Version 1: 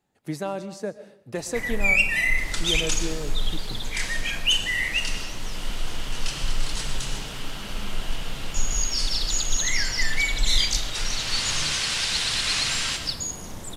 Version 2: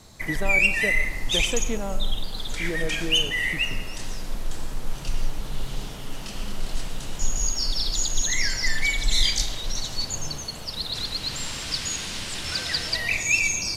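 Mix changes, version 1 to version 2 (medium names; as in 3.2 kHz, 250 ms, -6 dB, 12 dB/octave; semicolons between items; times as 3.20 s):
first sound: entry -1.35 s; second sound -7.5 dB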